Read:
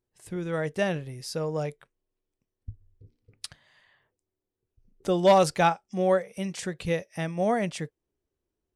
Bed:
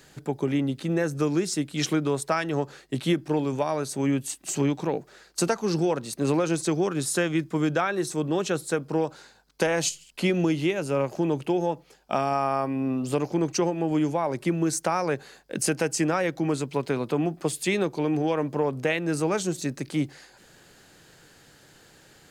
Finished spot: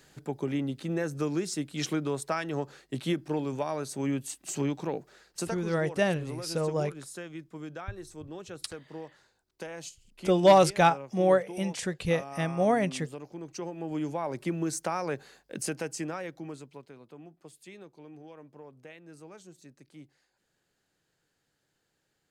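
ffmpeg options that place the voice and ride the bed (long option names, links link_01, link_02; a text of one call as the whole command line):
ffmpeg -i stem1.wav -i stem2.wav -filter_complex "[0:a]adelay=5200,volume=0.5dB[link_01];[1:a]volume=5dB,afade=type=out:start_time=5.13:duration=0.62:silence=0.281838,afade=type=in:start_time=13.44:duration=0.84:silence=0.298538,afade=type=out:start_time=15.27:duration=1.64:silence=0.133352[link_02];[link_01][link_02]amix=inputs=2:normalize=0" out.wav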